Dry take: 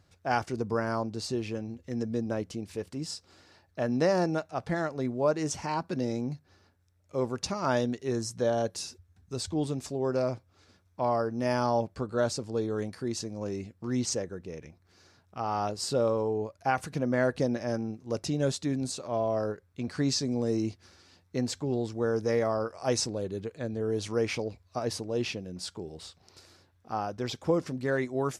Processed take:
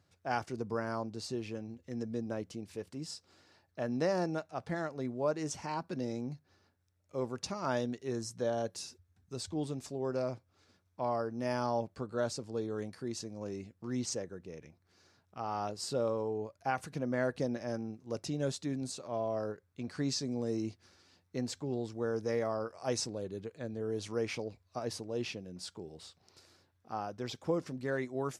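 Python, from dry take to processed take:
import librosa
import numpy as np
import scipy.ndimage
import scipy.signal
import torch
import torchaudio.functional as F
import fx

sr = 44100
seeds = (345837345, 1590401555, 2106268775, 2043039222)

y = scipy.signal.sosfilt(scipy.signal.butter(2, 81.0, 'highpass', fs=sr, output='sos'), x)
y = F.gain(torch.from_numpy(y), -6.0).numpy()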